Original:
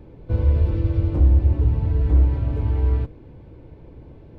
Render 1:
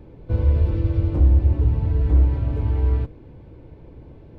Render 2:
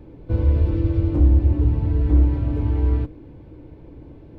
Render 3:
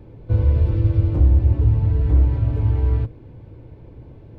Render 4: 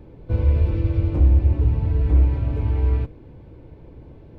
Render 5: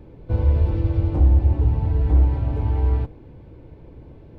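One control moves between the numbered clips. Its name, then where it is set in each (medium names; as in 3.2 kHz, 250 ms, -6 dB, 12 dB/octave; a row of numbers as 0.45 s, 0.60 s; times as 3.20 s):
dynamic bell, frequency: 7.6 kHz, 300 Hz, 110 Hz, 2.4 kHz, 810 Hz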